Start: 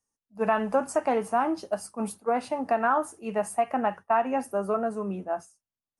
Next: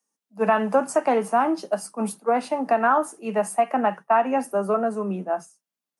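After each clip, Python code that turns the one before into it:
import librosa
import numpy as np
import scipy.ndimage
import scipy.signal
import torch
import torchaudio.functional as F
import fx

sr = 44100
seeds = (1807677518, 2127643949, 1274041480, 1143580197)

y = scipy.signal.sosfilt(scipy.signal.butter(16, 150.0, 'highpass', fs=sr, output='sos'), x)
y = y * librosa.db_to_amplitude(4.5)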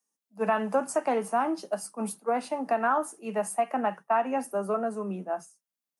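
y = fx.high_shelf(x, sr, hz=6600.0, db=5.5)
y = y * librosa.db_to_amplitude(-6.0)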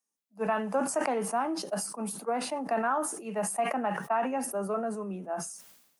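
y = fx.sustainer(x, sr, db_per_s=66.0)
y = y * librosa.db_to_amplitude(-3.5)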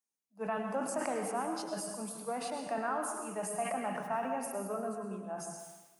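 y = fx.rev_plate(x, sr, seeds[0], rt60_s=1.1, hf_ratio=0.9, predelay_ms=90, drr_db=4.0)
y = y * librosa.db_to_amplitude(-7.0)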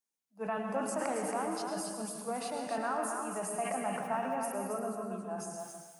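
y = x + 10.0 ** (-6.0 / 20.0) * np.pad(x, (int(274 * sr / 1000.0), 0))[:len(x)]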